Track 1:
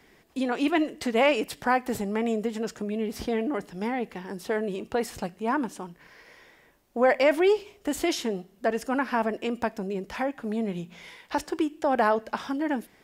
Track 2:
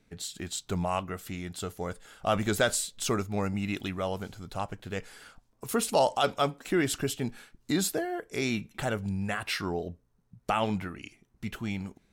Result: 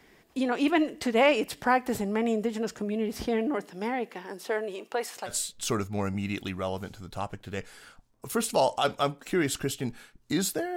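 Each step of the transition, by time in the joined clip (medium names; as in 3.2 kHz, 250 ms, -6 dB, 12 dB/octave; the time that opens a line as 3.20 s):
track 1
3.55–5.37 s: high-pass 190 Hz -> 680 Hz
5.31 s: go over to track 2 from 2.70 s, crossfade 0.12 s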